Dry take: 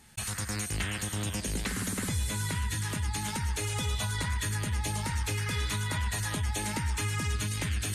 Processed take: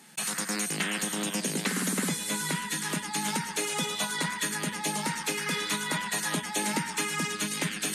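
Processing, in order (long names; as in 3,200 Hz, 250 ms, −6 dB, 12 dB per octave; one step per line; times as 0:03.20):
elliptic high-pass filter 160 Hz, stop band 40 dB
level +5.5 dB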